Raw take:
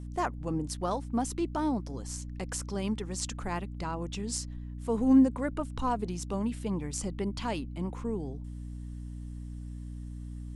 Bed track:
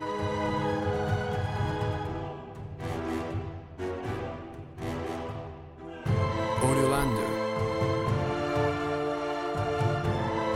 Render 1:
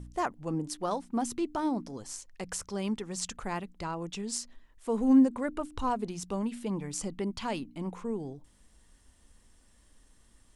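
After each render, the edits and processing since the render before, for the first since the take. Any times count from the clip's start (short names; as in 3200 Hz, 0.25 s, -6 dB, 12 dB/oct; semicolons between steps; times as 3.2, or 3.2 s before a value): de-hum 60 Hz, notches 5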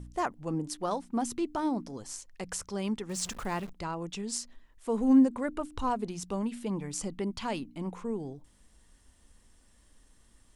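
3.09–3.73 zero-crossing step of -41.5 dBFS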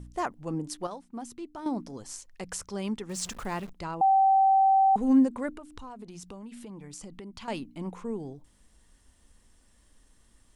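0.87–1.66 gain -8.5 dB; 4.01–4.96 bleep 774 Hz -17.5 dBFS; 5.5–7.48 compressor, threshold -40 dBFS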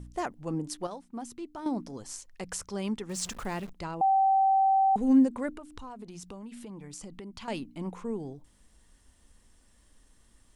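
dynamic EQ 1100 Hz, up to -6 dB, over -39 dBFS, Q 1.8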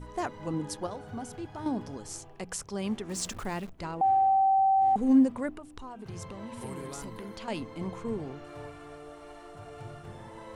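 add bed track -16.5 dB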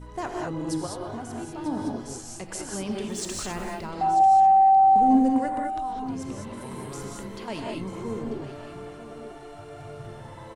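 echo 0.942 s -14 dB; non-linear reverb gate 0.23 s rising, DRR -0.5 dB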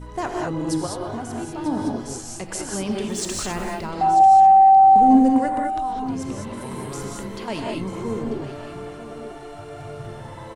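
gain +5 dB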